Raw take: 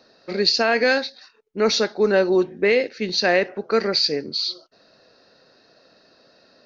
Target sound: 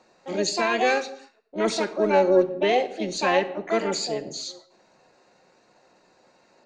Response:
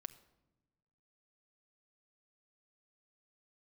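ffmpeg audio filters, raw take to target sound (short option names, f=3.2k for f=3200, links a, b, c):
-filter_complex "[0:a]asplit=2[a][b];[b]asetrate=66075,aresample=44100,atempo=0.66742,volume=-1dB[c];[a][c]amix=inputs=2:normalize=0,lowpass=f=2.4k:p=1[d];[1:a]atrim=start_sample=2205,afade=t=out:st=0.35:d=0.01,atrim=end_sample=15876[e];[d][e]afir=irnorm=-1:irlink=0"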